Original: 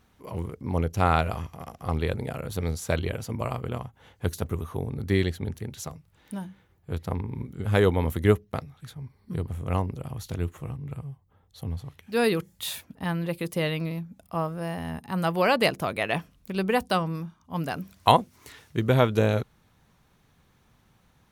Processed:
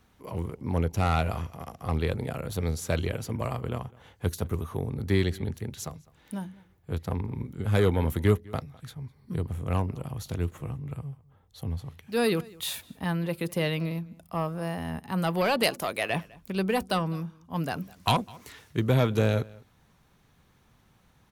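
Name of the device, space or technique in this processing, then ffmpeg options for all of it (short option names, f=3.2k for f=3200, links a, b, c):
one-band saturation: -filter_complex "[0:a]asettb=1/sr,asplit=3[a][b][c];[a]atrim=end=15.634[d];[b]atrim=start=15.63:end=16.1,asetpts=PTS-STARTPTS,afade=t=in:d=0.004:c=qsin,afade=t=out:st=0.466:d=0.004:c=qsin,bass=f=250:g=-9,treble=f=4k:g=6[e];[c]atrim=start=16.096[f];[d][e]acrossfade=d=0.004:c1=hsin:c2=qsin[g];[g][f]acrossfade=d=0.004:c1=qsin:c2=hsin,acrossover=split=250|2700[h][i][j];[i]asoftclip=type=tanh:threshold=-20.5dB[k];[h][k][j]amix=inputs=3:normalize=0,asplit=2[l][m];[m]adelay=204.1,volume=-23dB,highshelf=f=4k:g=-4.59[n];[l][n]amix=inputs=2:normalize=0"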